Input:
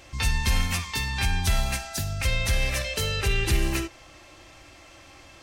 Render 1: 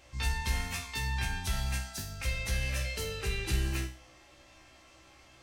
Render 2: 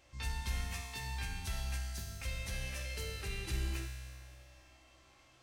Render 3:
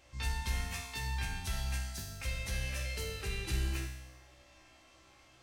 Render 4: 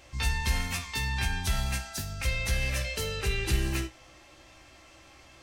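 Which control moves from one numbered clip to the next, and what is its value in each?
feedback comb, decay: 0.39 s, 2.1 s, 1 s, 0.16 s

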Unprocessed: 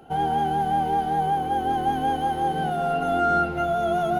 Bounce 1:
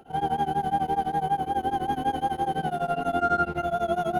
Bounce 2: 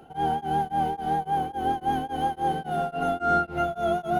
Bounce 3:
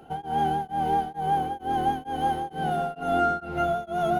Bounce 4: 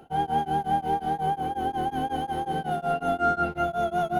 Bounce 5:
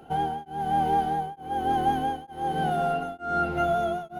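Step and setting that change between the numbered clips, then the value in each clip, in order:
tremolo of two beating tones, nulls at: 12 Hz, 3.6 Hz, 2.2 Hz, 5.5 Hz, 1.1 Hz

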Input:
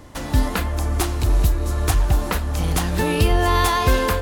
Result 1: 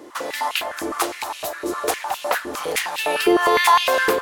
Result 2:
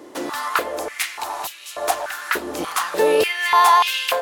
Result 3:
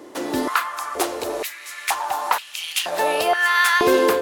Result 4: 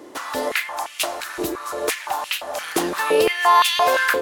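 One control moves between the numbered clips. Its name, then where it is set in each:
step-sequenced high-pass, rate: 9.8 Hz, 3.4 Hz, 2.1 Hz, 5.8 Hz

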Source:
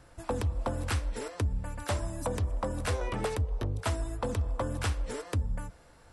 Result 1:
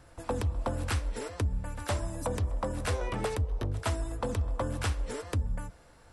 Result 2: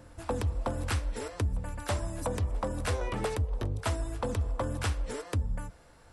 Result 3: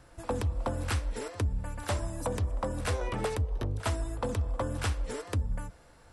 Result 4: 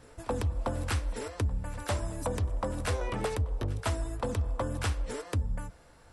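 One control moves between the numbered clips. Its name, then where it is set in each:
reverse echo, time: 115 ms, 694 ms, 57 ms, 1135 ms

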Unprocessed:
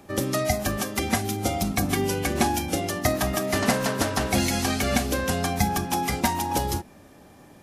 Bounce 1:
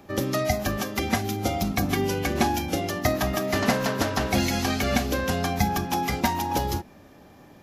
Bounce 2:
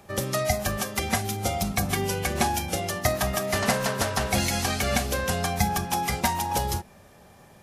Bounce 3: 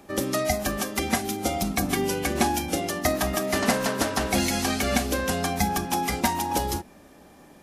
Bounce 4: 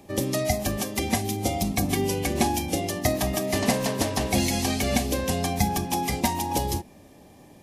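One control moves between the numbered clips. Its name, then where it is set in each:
peaking EQ, frequency: 9 kHz, 290 Hz, 110 Hz, 1.4 kHz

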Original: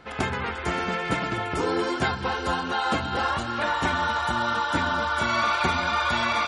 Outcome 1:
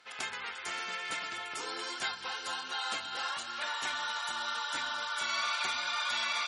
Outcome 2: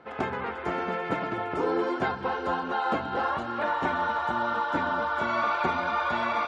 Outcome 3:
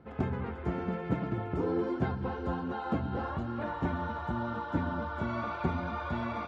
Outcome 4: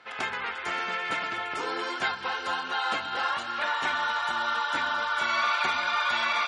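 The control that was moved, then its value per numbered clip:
band-pass filter, frequency: 7.2 kHz, 560 Hz, 140 Hz, 2.4 kHz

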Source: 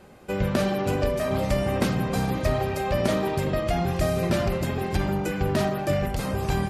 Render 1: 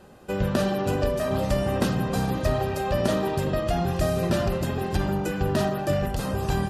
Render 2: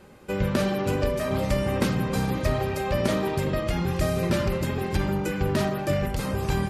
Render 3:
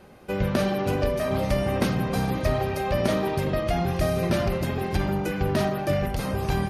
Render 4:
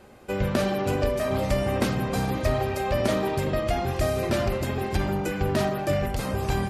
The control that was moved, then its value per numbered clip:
band-stop, frequency: 2.2 kHz, 700 Hz, 7.5 kHz, 170 Hz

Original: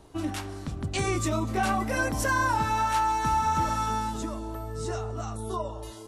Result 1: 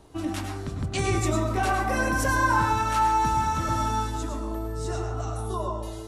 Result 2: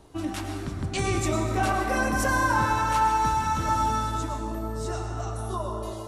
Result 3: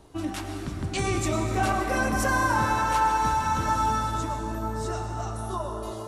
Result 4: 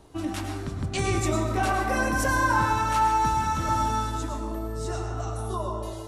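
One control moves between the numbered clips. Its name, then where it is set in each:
plate-style reverb, RT60: 0.56 s, 2.5 s, 5.2 s, 1.2 s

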